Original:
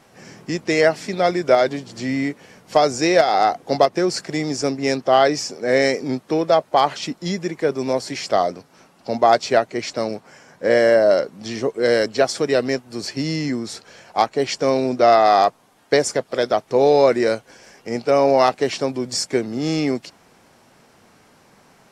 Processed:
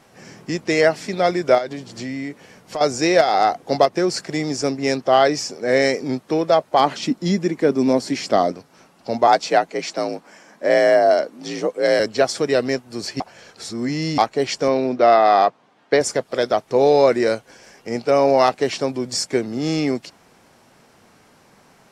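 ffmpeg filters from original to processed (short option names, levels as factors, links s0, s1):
-filter_complex "[0:a]asettb=1/sr,asplit=3[s0][s1][s2];[s0]atrim=end=1.584[s3];[s1]atrim=start=1.58:end=2.81,asetpts=PTS-STARTPTS,afade=t=in:d=0.004:c=qsin,afade=t=out:st=1.226:d=0.004:c=qsin,acompressor=threshold=0.0501:ratio=3:attack=3.2:release=140:knee=1:detection=peak[s4];[s2]atrim=start=2.806[s5];[s3][s4]acrossfade=d=0.004:c1=hsin:c2=qsin[s6];[s6][s5]acrossfade=d=0.004:c1=qsin:c2=hsin,asettb=1/sr,asplit=3[s7][s8][s9];[s7]atrim=end=6.794[s10];[s8]atrim=start=6.79:end=8.52,asetpts=PTS-STARTPTS,afade=t=in:d=0.004:c=qsin,afade=t=out:st=1.726:d=0.004:c=qsin,equalizer=f=250:w=1.5:g=9.5[s11];[s9]atrim=start=8.516[s12];[s10][s11]acrossfade=d=0.004:c1=hsin:c2=qsin[s13];[s13][s12]acrossfade=d=0.004:c1=qsin:c2=hsin,asettb=1/sr,asplit=3[s14][s15][s16];[s14]atrim=end=9.274[s17];[s15]atrim=start=9.27:end=12,asetpts=PTS-STARTPTS,afade=t=in:d=0.004:c=qsin,afade=t=out:st=2.726:d=0.004:c=qsin,afreqshift=54[s18];[s16]atrim=start=11.996[s19];[s17][s18]acrossfade=d=0.004:c1=hsin:c2=qsin[s20];[s20][s19]acrossfade=d=0.004:c1=qsin:c2=hsin,asettb=1/sr,asplit=3[s21][s22][s23];[s21]atrim=end=14.684[s24];[s22]atrim=start=14.68:end=16.01,asetpts=PTS-STARTPTS,afade=t=in:d=0.004:c=qsin,afade=t=out:st=1.326:d=0.004:c=qsin,highpass=140,lowpass=3900[s25];[s23]atrim=start=16.006[s26];[s24][s25]acrossfade=d=0.004:c1=hsin:c2=qsin[s27];[s27][s26]acrossfade=d=0.004:c1=qsin:c2=hsin,asplit=3[s28][s29][s30];[s28]atrim=end=13.202[s31];[s29]atrim=start=13.198:end=14.182,asetpts=PTS-STARTPTS,areverse[s32];[s30]atrim=start=14.178[s33];[s31][s32]acrossfade=d=0.004:c1=hsin:c2=hsin[s34];[s34][s33]acrossfade=d=0.004:c1=hsin:c2=hsin"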